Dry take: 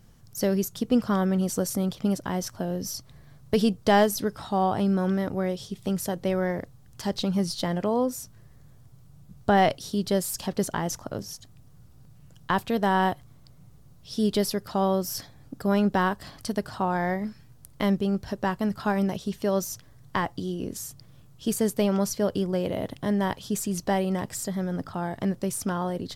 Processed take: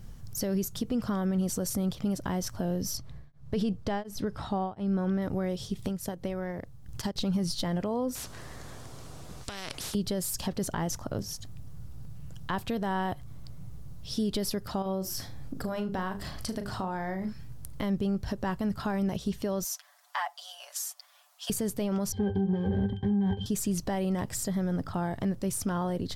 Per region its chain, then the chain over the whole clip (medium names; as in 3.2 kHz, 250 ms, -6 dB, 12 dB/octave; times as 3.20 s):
2.97–5.22 s: low-pass 3.5 kHz 6 dB/octave + tremolo of two beating tones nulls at 1.4 Hz
5.79–7.16 s: transient shaper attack +9 dB, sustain -7 dB + compression 2:1, threshold -37 dBFS
8.15–9.95 s: low-pass 9.1 kHz + compression 5:1, threshold -27 dBFS + spectrum-flattening compressor 4:1
14.82–17.29 s: hum notches 50/100/150/200/250/300/350/400/450/500 Hz + compression 2.5:1, threshold -33 dBFS + flutter echo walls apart 6.3 m, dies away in 0.22 s
19.64–21.50 s: steep high-pass 640 Hz 72 dB/octave + comb 6.9 ms, depth 68%
22.12–23.46 s: waveshaping leveller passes 5 + pitch-class resonator G, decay 0.15 s
whole clip: peak limiter -20 dBFS; compression 1.5:1, threshold -40 dBFS; bass shelf 100 Hz +11 dB; trim +3 dB